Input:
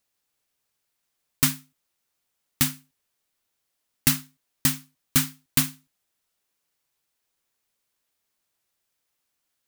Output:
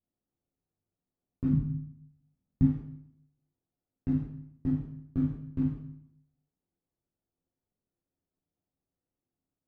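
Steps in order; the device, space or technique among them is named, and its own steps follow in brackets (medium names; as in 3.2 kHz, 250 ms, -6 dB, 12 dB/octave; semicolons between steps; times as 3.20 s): television next door (compression 3:1, threshold -23 dBFS, peak gain reduction 7 dB; low-pass 380 Hz 12 dB/octave; reverberation RT60 0.70 s, pre-delay 8 ms, DRR -8.5 dB); 1.53–2.67 s: resonant low shelf 280 Hz +8.5 dB, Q 1.5; trim -5 dB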